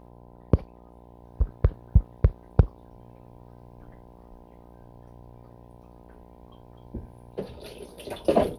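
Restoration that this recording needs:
clipped peaks rebuilt −4.5 dBFS
hum removal 59.7 Hz, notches 17

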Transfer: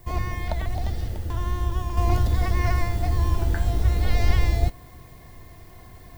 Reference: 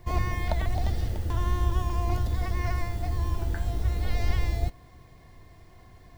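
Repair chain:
downward expander −37 dBFS, range −21 dB
level 0 dB, from 0:01.97 −6 dB

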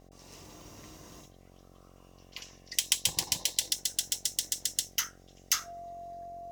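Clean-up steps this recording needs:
hum removal 45.4 Hz, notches 17
notch filter 690 Hz, Q 30

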